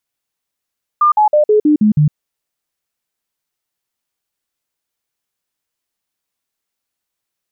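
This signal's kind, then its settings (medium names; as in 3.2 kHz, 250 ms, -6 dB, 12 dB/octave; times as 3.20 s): stepped sine 1.2 kHz down, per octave 2, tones 7, 0.11 s, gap 0.05 s -7 dBFS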